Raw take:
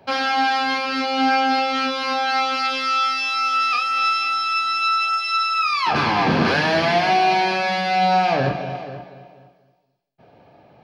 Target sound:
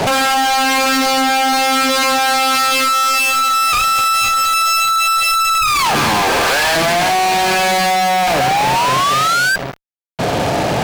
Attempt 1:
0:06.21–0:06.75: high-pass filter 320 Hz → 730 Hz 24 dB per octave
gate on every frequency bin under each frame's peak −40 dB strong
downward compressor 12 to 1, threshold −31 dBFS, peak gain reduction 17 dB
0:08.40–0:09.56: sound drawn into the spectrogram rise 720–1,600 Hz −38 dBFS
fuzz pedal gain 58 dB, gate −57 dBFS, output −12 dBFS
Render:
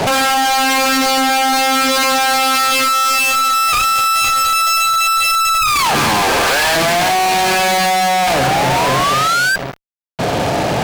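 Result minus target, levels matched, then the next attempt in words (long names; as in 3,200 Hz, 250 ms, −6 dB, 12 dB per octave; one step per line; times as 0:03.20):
downward compressor: peak gain reduction −6 dB
0:06.21–0:06.75: high-pass filter 320 Hz → 730 Hz 24 dB per octave
gate on every frequency bin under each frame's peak −40 dB strong
downward compressor 12 to 1, threshold −37.5 dBFS, peak gain reduction 23 dB
0:08.40–0:09.56: sound drawn into the spectrogram rise 720–1,600 Hz −38 dBFS
fuzz pedal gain 58 dB, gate −57 dBFS, output −12 dBFS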